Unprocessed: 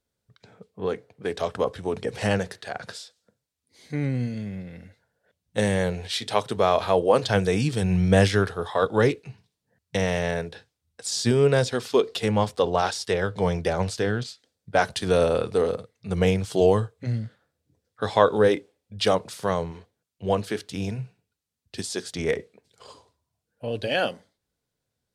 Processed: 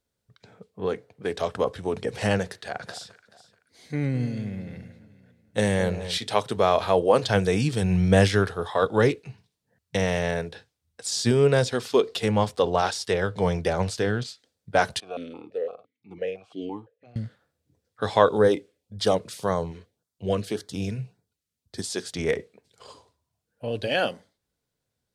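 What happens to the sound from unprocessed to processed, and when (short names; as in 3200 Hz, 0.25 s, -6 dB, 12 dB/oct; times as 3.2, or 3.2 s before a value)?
2.44–6.18 echo with dull and thin repeats by turns 0.215 s, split 1400 Hz, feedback 51%, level -11.5 dB
15–17.16 vowel sequencer 5.9 Hz
18.29–21.83 LFO notch sine 1.8 Hz 790–2800 Hz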